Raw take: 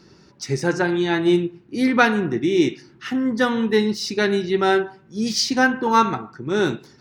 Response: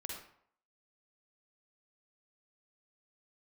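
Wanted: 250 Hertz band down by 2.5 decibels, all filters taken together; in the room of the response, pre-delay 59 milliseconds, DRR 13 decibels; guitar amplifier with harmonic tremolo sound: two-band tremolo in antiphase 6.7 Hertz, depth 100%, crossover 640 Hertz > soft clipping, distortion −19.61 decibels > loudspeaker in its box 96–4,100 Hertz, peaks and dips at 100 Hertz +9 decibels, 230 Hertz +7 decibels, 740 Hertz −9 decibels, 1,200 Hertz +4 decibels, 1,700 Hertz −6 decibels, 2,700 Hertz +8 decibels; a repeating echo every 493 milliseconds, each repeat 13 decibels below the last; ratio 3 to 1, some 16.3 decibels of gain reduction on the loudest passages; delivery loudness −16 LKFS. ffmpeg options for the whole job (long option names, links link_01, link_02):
-filter_complex "[0:a]equalizer=frequency=250:width_type=o:gain=-7.5,acompressor=threshold=-34dB:ratio=3,aecho=1:1:493|986|1479:0.224|0.0493|0.0108,asplit=2[link_01][link_02];[1:a]atrim=start_sample=2205,adelay=59[link_03];[link_02][link_03]afir=irnorm=-1:irlink=0,volume=-11.5dB[link_04];[link_01][link_04]amix=inputs=2:normalize=0,acrossover=split=640[link_05][link_06];[link_05]aeval=exprs='val(0)*(1-1/2+1/2*cos(2*PI*6.7*n/s))':channel_layout=same[link_07];[link_06]aeval=exprs='val(0)*(1-1/2-1/2*cos(2*PI*6.7*n/s))':channel_layout=same[link_08];[link_07][link_08]amix=inputs=2:normalize=0,asoftclip=threshold=-28dB,highpass=96,equalizer=frequency=100:width_type=q:width=4:gain=9,equalizer=frequency=230:width_type=q:width=4:gain=7,equalizer=frequency=740:width_type=q:width=4:gain=-9,equalizer=frequency=1200:width_type=q:width=4:gain=4,equalizer=frequency=1700:width_type=q:width=4:gain=-6,equalizer=frequency=2700:width_type=q:width=4:gain=8,lowpass=frequency=4100:width=0.5412,lowpass=frequency=4100:width=1.3066,volume=22.5dB"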